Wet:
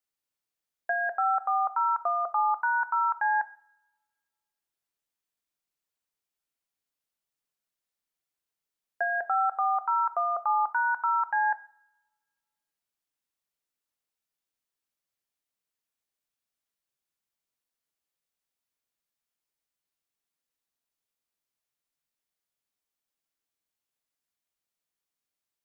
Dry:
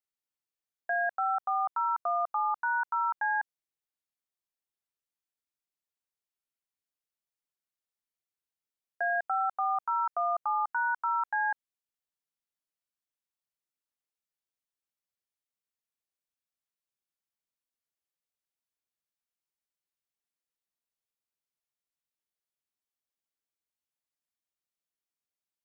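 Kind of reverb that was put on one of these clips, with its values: two-slope reverb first 0.5 s, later 1.6 s, from -25 dB, DRR 12.5 dB; gain +3.5 dB

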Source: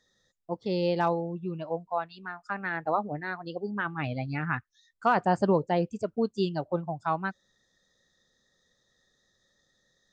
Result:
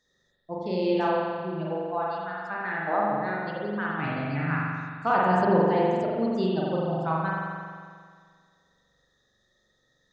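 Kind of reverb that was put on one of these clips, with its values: spring tank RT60 1.9 s, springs 43 ms, chirp 45 ms, DRR -5 dB; gain -3 dB

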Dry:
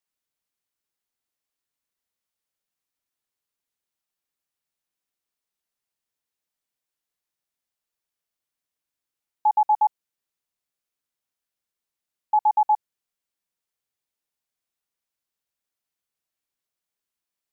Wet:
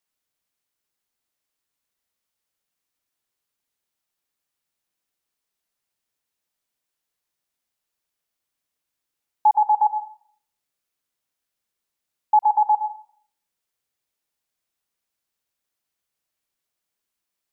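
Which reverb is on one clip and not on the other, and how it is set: plate-style reverb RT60 0.56 s, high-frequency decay 0.85×, pre-delay 85 ms, DRR 13.5 dB; gain +4 dB

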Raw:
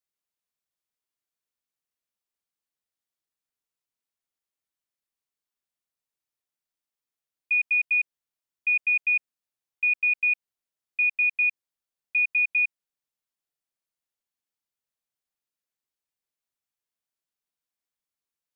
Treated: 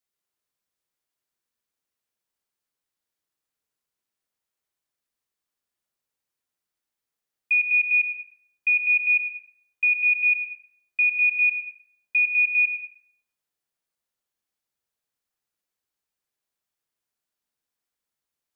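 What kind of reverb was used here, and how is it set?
plate-style reverb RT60 1 s, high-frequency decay 0.35×, pre-delay 85 ms, DRR 2 dB; gain +2.5 dB

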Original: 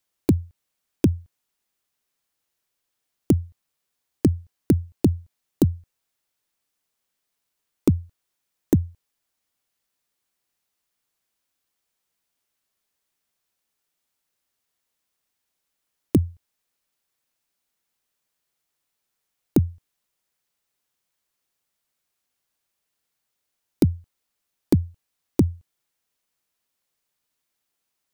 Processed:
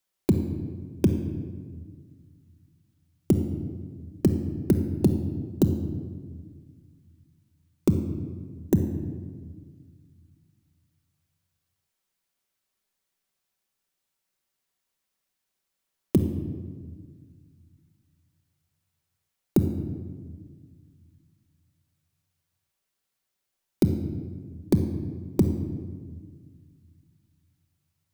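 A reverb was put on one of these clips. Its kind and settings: shoebox room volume 2000 m³, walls mixed, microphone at 1.1 m; gain -3 dB

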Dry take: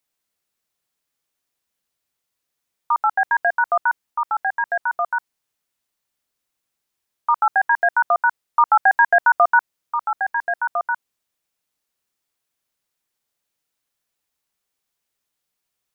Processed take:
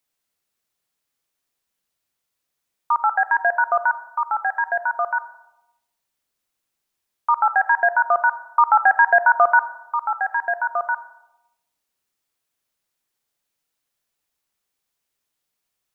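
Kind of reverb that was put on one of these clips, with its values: digital reverb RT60 0.95 s, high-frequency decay 0.35×, pre-delay 15 ms, DRR 13 dB

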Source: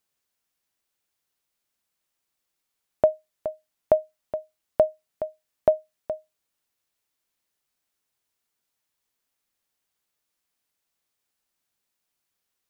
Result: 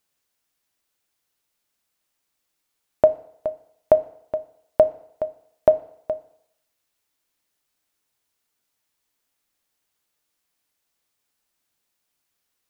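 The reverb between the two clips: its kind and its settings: FDN reverb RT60 0.72 s, low-frequency decay 0.8×, high-frequency decay 0.95×, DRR 12 dB; gain +3.5 dB

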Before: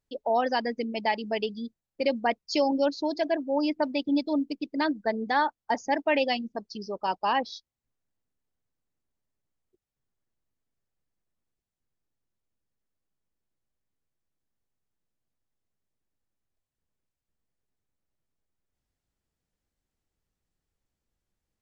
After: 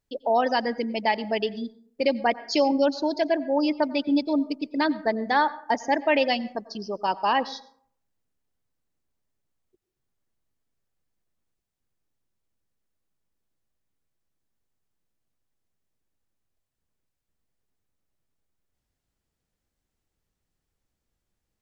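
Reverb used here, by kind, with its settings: plate-style reverb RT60 0.57 s, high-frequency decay 0.45×, pre-delay 80 ms, DRR 17.5 dB; gain +3 dB

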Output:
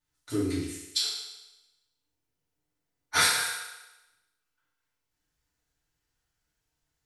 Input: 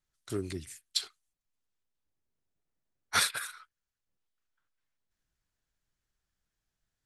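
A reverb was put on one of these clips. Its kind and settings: FDN reverb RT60 1 s, low-frequency decay 0.7×, high-frequency decay 1×, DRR -8.5 dB; gain -3.5 dB

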